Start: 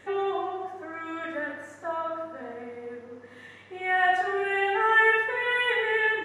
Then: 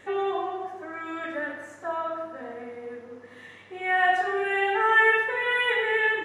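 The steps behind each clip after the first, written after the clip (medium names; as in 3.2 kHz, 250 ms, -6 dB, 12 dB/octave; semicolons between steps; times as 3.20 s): peaking EQ 86 Hz -2.5 dB 2 oct; trim +1 dB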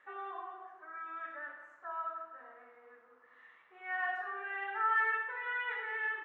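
in parallel at -11.5 dB: hard clipper -18.5 dBFS, distortion -14 dB; on the sum: band-pass filter 1.3 kHz, Q 2.9; trim -7 dB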